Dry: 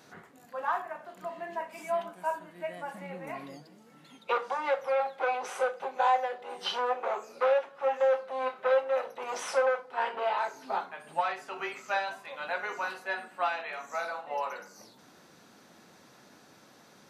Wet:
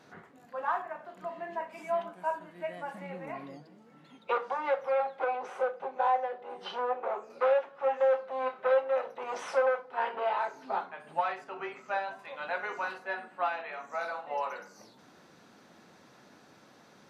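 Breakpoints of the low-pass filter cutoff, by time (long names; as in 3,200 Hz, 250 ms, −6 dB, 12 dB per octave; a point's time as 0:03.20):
low-pass filter 6 dB per octave
2,900 Hz
from 0:02.41 4,500 Hz
from 0:03.26 2,100 Hz
from 0:05.24 1,100 Hz
from 0:07.30 2,400 Hz
from 0:11.44 1,300 Hz
from 0:12.19 3,100 Hz
from 0:12.98 1,900 Hz
from 0:14.01 4,200 Hz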